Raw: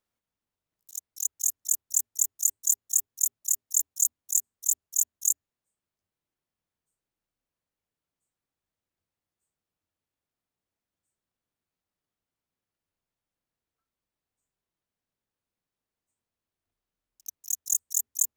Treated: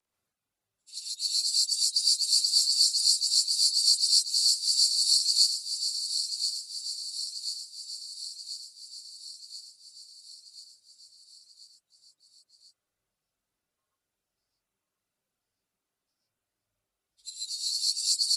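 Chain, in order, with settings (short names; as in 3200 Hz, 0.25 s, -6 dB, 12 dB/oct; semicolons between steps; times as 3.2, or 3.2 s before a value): inharmonic rescaling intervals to 87%; non-linear reverb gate 0.17 s rising, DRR -6 dB; reverb removal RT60 0.73 s; feedback echo 1.035 s, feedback 59%, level -8 dB; 17.49–18 ensemble effect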